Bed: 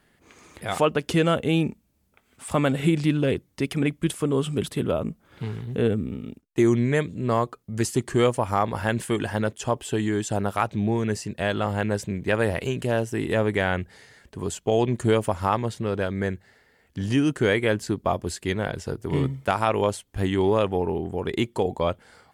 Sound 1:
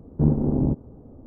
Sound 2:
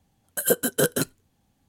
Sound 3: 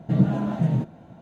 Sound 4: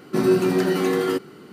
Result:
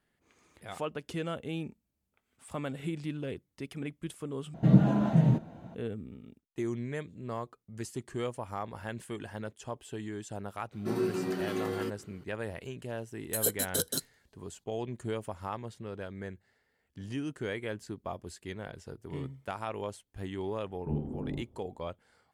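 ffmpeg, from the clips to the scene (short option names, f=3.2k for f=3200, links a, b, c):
-filter_complex "[0:a]volume=-14.5dB[a];[2:a]highshelf=f=3.1k:t=q:w=3:g=7.5[b];[1:a]flanger=delay=19.5:depth=7.6:speed=1.6[c];[a]asplit=2[d][e];[d]atrim=end=4.544[f];[3:a]atrim=end=1.21,asetpts=PTS-STARTPTS,volume=-1dB[g];[e]atrim=start=5.746[h];[4:a]atrim=end=1.52,asetpts=PTS-STARTPTS,volume=-13dB,afade=t=in:d=0.004:c=hsin,afade=t=out:st=1.516:d=0.004:c=hsin,adelay=10720[i];[b]atrim=end=1.68,asetpts=PTS-STARTPTS,volume=-13dB,afade=t=in:d=0.004:c=hsin,afade=t=out:st=1.676:d=0.004:c=hsin,adelay=12960[j];[c]atrim=end=1.26,asetpts=PTS-STARTPTS,volume=-13dB,afade=t=in:d=0.004:c=hsin,afade=t=out:st=1.256:d=0.004:c=hsin,adelay=20670[k];[f][g]acrossfade=d=0.004:c1=hsin:c2=hsin[l];[l][h]acrossfade=d=0.004:c1=hsin:c2=hsin[m];[m][i][j][k]amix=inputs=4:normalize=0"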